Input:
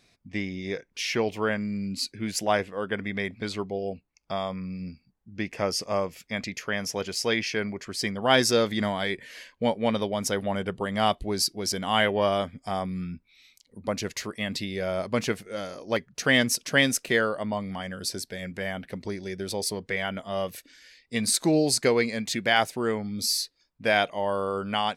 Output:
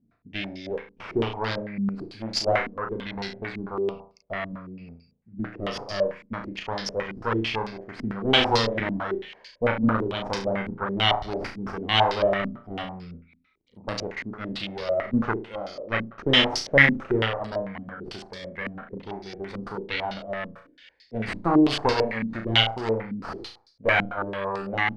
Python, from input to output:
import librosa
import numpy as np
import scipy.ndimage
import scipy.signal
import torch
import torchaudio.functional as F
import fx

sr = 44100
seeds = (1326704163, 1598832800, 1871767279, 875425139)

y = fx.cheby_harmonics(x, sr, harmonics=(4, 8), levels_db=(-10, -22), full_scale_db=-7.0)
y = fx.room_flutter(y, sr, wall_m=6.1, rt60_s=0.42)
y = fx.filter_held_lowpass(y, sr, hz=9.0, low_hz=240.0, high_hz=4800.0)
y = y * librosa.db_to_amplitude(-5.0)